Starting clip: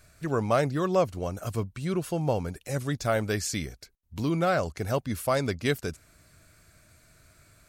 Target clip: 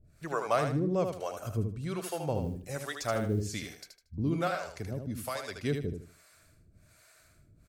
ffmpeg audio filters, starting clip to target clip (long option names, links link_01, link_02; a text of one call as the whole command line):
ffmpeg -i in.wav -filter_complex "[0:a]acrossover=split=450[link_01][link_02];[link_01]aeval=exprs='val(0)*(1-1/2+1/2*cos(2*PI*1.2*n/s))':channel_layout=same[link_03];[link_02]aeval=exprs='val(0)*(1-1/2-1/2*cos(2*PI*1.2*n/s))':channel_layout=same[link_04];[link_03][link_04]amix=inputs=2:normalize=0,asettb=1/sr,asplit=3[link_05][link_06][link_07];[link_05]atrim=end=2.354[link_08];[link_06]atrim=start=2.35:end=3.49,asetpts=PTS-STARTPTS,afade=type=in:duration=0.004:curve=qsin,afade=type=out:start_time=1.136:duration=0.004:curve=qsin,acrusher=bits=9:mode=log:mix=0:aa=0.000001[link_09];[link_07]atrim=start=3.486[link_10];[link_08][link_09]acrossfade=duration=0.004:curve1=hsin:curve2=qsin[link_11];[link_11][link_10]acrossfade=duration=0.004:curve1=qsin:curve2=hsin,asettb=1/sr,asplit=3[link_12][link_13][link_14];[link_12]atrim=end=4.474[link_15];[link_13]atrim=start=4.47:end=5.55,asetpts=PTS-STARTPTS,afade=type=in:duration=0.004:curve=qsin,afade=type=out:start_time=1.076:duration=0.004:curve=qsin,acrossover=split=240|1400[link_16][link_17][link_18];[link_16]acompressor=threshold=-37dB:ratio=4[link_19];[link_17]acompressor=threshold=-39dB:ratio=4[link_20];[link_18]acompressor=threshold=-40dB:ratio=4[link_21];[link_19][link_20][link_21]amix=inputs=3:normalize=0[link_22];[link_14]atrim=start=5.546[link_23];[link_15][link_22]acrossfade=duration=0.004:curve1=hsin:curve2=qsin[link_24];[link_24][link_23]acrossfade=duration=0.004:curve1=qsin:curve2=hsin,asplit=2[link_25][link_26];[link_26]aecho=0:1:77|154|231|308:0.501|0.14|0.0393|0.011[link_27];[link_25][link_27]amix=inputs=2:normalize=0" out.wav